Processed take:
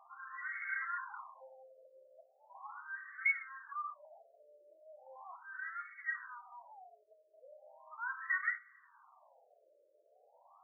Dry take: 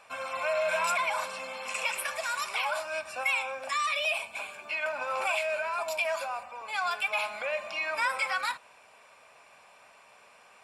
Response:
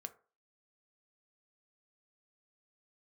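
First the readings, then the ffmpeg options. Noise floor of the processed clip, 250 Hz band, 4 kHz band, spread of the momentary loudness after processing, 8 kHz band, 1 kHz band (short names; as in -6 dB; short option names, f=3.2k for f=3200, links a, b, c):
-70 dBFS, under -30 dB, under -40 dB, 23 LU, under -40 dB, -15.0 dB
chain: -filter_complex "[0:a]equalizer=f=1.9k:t=o:w=0.23:g=15,acrossover=split=1300[a][b];[a]alimiter=level_in=23dB:limit=-24dB:level=0:latency=1:release=331,volume=-23dB[c];[c][b]amix=inputs=2:normalize=0,aresample=11025,aresample=44100,acompressor=mode=upward:threshold=-48dB:ratio=2.5,flanger=delay=6.6:depth=5.7:regen=65:speed=0.44:shape=sinusoidal[d];[1:a]atrim=start_sample=2205,asetrate=30870,aresample=44100[e];[d][e]afir=irnorm=-1:irlink=0,afftfilt=real='re*between(b*sr/1024,450*pow(1600/450,0.5+0.5*sin(2*PI*0.38*pts/sr))/1.41,450*pow(1600/450,0.5+0.5*sin(2*PI*0.38*pts/sr))*1.41)':imag='im*between(b*sr/1024,450*pow(1600/450,0.5+0.5*sin(2*PI*0.38*pts/sr))/1.41,450*pow(1600/450,0.5+0.5*sin(2*PI*0.38*pts/sr))*1.41)':win_size=1024:overlap=0.75,volume=1.5dB"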